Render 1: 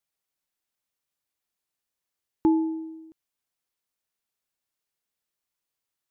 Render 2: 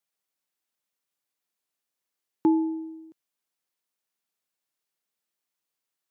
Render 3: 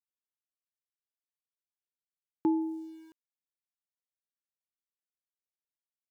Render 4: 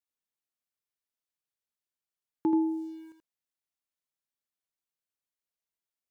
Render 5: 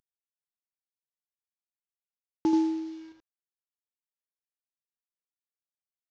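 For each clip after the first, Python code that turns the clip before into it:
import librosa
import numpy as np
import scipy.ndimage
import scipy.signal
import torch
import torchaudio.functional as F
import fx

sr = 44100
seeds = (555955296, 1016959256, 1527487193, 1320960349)

y1 = scipy.signal.sosfilt(scipy.signal.butter(2, 150.0, 'highpass', fs=sr, output='sos'), x)
y2 = np.where(np.abs(y1) >= 10.0 ** (-51.0 / 20.0), y1, 0.0)
y2 = y2 * 10.0 ** (-6.0 / 20.0)
y3 = y2 + 10.0 ** (-5.5 / 20.0) * np.pad(y2, (int(81 * sr / 1000.0), 0))[:len(y2)]
y4 = fx.cvsd(y3, sr, bps=32000)
y4 = y4 * 10.0 ** (2.0 / 20.0)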